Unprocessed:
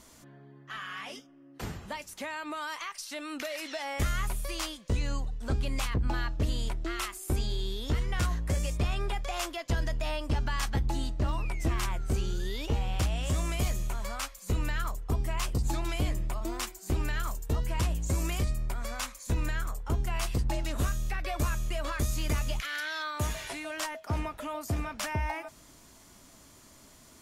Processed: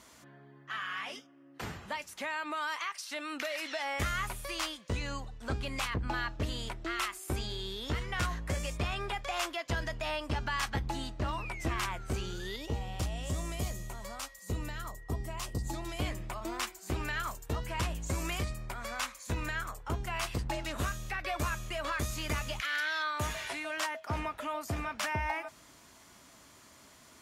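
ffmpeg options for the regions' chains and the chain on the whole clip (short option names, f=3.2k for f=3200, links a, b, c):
-filter_complex "[0:a]asettb=1/sr,asplit=3[a][b][c];[a]atrim=end=12.564[d];[b]atrim=start=12.56:end=15.99,asetpts=PTS-STARTPTS,afade=t=in:d=0.004:c=qsin,afade=t=out:st=3.426:d=0.004:c=qsin,aeval=exprs='val(0)+0.00501*sin(2*PI*1900*n/s)':c=same,equalizer=f=1.8k:w=0.71:g=-11.5[e];[c]atrim=start=15.986[f];[d][e]acrossfade=d=0.004:c1=hsin:c2=qsin[g];[g][f]acrossfade=d=0.004:c1=qsin:c2=hsin,highpass=56,equalizer=f=1.7k:w=0.39:g=7,volume=-4.5dB"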